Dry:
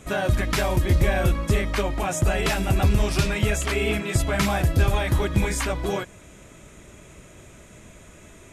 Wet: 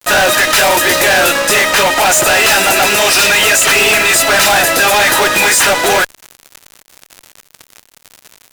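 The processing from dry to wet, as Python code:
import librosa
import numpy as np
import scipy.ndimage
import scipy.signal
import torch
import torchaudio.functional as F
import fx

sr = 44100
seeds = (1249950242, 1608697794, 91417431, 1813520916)

y = scipy.signal.sosfilt(scipy.signal.butter(2, 850.0, 'highpass', fs=sr, output='sos'), x)
y = fx.notch_comb(y, sr, f0_hz=1100.0)
y = fx.fuzz(y, sr, gain_db=45.0, gate_db=-46.0)
y = y * 10.0 ** (5.0 / 20.0)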